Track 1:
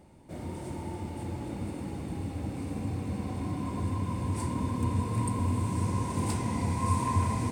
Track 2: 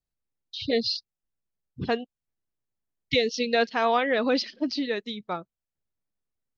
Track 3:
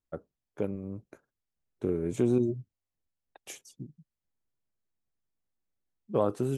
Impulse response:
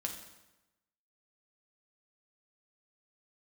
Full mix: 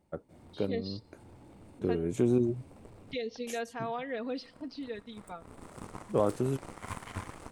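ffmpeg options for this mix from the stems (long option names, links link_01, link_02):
-filter_complex "[0:a]aeval=exprs='0.178*(cos(1*acos(clip(val(0)/0.178,-1,1)))-cos(1*PI/2))+0.0794*(cos(4*acos(clip(val(0)/0.178,-1,1)))-cos(4*PI/2))+0.0501*(cos(6*acos(clip(val(0)/0.178,-1,1)))-cos(6*PI/2))+0.0501*(cos(7*acos(clip(val(0)/0.178,-1,1)))-cos(7*PI/2))':channel_layout=same,volume=-14.5dB[link_01];[1:a]highshelf=frequency=4000:gain=-9.5,aecho=1:1:4.3:0.65,alimiter=limit=-12.5dB:level=0:latency=1,volume=-15dB,asplit=3[link_02][link_03][link_04];[link_03]volume=-16.5dB[link_05];[2:a]volume=-0.5dB[link_06];[link_04]apad=whole_len=331509[link_07];[link_01][link_07]sidechaincompress=threshold=-58dB:ratio=3:attack=20:release=247[link_08];[3:a]atrim=start_sample=2205[link_09];[link_05][link_09]afir=irnorm=-1:irlink=0[link_10];[link_08][link_02][link_06][link_10]amix=inputs=4:normalize=0"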